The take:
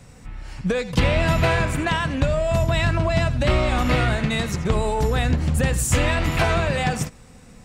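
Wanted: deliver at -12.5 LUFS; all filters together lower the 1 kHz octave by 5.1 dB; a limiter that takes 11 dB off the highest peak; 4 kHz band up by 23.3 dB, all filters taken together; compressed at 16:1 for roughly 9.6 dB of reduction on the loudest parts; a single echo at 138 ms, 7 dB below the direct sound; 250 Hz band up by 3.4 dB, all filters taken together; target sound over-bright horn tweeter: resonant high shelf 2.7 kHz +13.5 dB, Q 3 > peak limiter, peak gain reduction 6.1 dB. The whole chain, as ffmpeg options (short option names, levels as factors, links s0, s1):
-af "equalizer=f=250:t=o:g=5,equalizer=f=1000:t=o:g=-5,equalizer=f=4000:t=o:g=6,acompressor=threshold=0.0708:ratio=16,alimiter=level_in=1.12:limit=0.0631:level=0:latency=1,volume=0.891,highshelf=f=2700:t=q:w=3:g=13.5,aecho=1:1:138:0.447,volume=3.76,alimiter=limit=0.631:level=0:latency=1"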